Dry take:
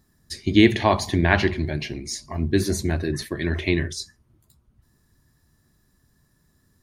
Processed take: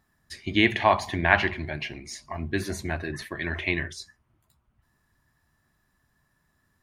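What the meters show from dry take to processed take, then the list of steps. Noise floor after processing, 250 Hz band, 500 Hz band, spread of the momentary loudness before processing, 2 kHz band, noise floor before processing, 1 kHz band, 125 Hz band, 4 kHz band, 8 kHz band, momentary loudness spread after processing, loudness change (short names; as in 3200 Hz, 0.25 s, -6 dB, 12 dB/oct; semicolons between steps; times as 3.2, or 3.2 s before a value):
-72 dBFS, -8.5 dB, -5.0 dB, 14 LU, +1.0 dB, -66 dBFS, +1.0 dB, -8.5 dB, -3.5 dB, -8.5 dB, 16 LU, -3.5 dB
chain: band shelf 1400 Hz +9.5 dB 2.6 oct; gain -8.5 dB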